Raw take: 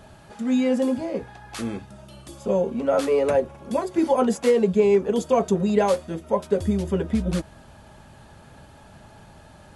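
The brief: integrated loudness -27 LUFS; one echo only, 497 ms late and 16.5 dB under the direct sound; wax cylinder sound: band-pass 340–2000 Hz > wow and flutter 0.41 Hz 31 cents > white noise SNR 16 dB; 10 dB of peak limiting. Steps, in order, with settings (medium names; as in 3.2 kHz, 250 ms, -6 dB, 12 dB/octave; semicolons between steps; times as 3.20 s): peak limiter -18 dBFS; band-pass 340–2000 Hz; delay 497 ms -16.5 dB; wow and flutter 0.41 Hz 31 cents; white noise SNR 16 dB; trim +3 dB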